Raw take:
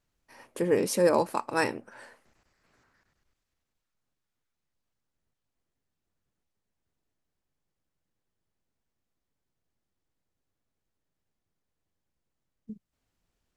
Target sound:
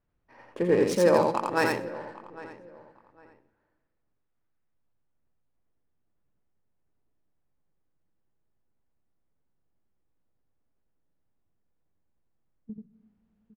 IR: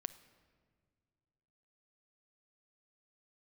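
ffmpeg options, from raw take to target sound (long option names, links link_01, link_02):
-filter_complex "[0:a]aecho=1:1:805|1610:0.133|0.0333,adynamicsmooth=sensitivity=6.5:basefreq=2000,asplit=2[link_01][link_02];[1:a]atrim=start_sample=2205,highshelf=frequency=8500:gain=7.5,adelay=85[link_03];[link_02][link_03]afir=irnorm=-1:irlink=0,volume=-0.5dB[link_04];[link_01][link_04]amix=inputs=2:normalize=0,volume=1dB"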